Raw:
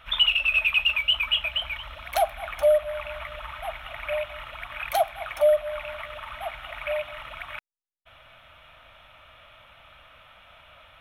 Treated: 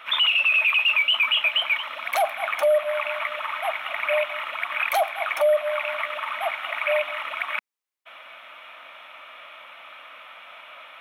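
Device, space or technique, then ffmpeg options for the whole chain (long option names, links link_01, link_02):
laptop speaker: -af "highpass=frequency=260:width=0.5412,highpass=frequency=260:width=1.3066,equalizer=frequency=1100:width_type=o:width=0.52:gain=5,equalizer=frequency=2200:width_type=o:width=0.57:gain=6,alimiter=limit=-18.5dB:level=0:latency=1:release=11,volume=5dB"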